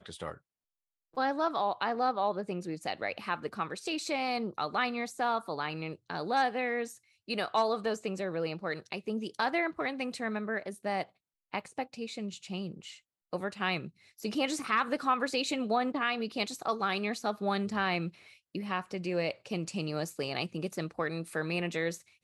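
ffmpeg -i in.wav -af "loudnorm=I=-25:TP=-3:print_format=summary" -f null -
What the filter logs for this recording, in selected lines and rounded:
Input Integrated:    -33.5 LUFS
Input True Peak:     -15.6 dBTP
Input LRA:             4.6 LU
Input Threshold:     -43.7 LUFS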